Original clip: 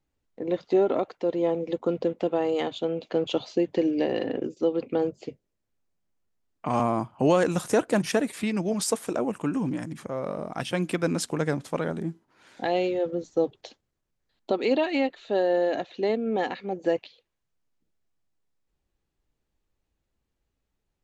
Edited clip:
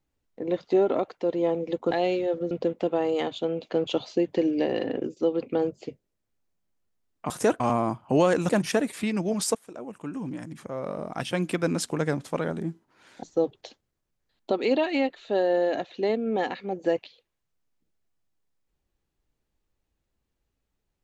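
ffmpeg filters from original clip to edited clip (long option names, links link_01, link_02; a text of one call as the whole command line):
ffmpeg -i in.wav -filter_complex "[0:a]asplit=8[link_01][link_02][link_03][link_04][link_05][link_06][link_07][link_08];[link_01]atrim=end=1.912[link_09];[link_02]atrim=start=12.628:end=13.232[link_10];[link_03]atrim=start=1.908:end=6.702[link_11];[link_04]atrim=start=7.588:end=7.892[link_12];[link_05]atrim=start=6.698:end=7.592[link_13];[link_06]atrim=start=7.888:end=8.95,asetpts=PTS-STARTPTS,afade=type=out:start_time=1.058:duration=0.004:curve=hsin:silence=0.112202[link_14];[link_07]atrim=start=8.95:end=12.632,asetpts=PTS-STARTPTS,afade=type=in:duration=1.55:silence=0.112202[link_15];[link_08]atrim=start=13.228[link_16];[link_09][link_10]acrossfade=duration=0.004:curve1=hsin:curve2=hsin[link_17];[link_17][link_11]acrossfade=duration=0.004:curve1=hsin:curve2=hsin[link_18];[link_18][link_12]acrossfade=duration=0.004:curve1=hsin:curve2=hsin[link_19];[link_19][link_13]acrossfade=duration=0.004:curve1=hsin:curve2=hsin[link_20];[link_14][link_15]concat=n=2:v=0:a=1[link_21];[link_20][link_21]acrossfade=duration=0.004:curve1=hsin:curve2=hsin[link_22];[link_22][link_16]acrossfade=duration=0.004:curve1=hsin:curve2=hsin" out.wav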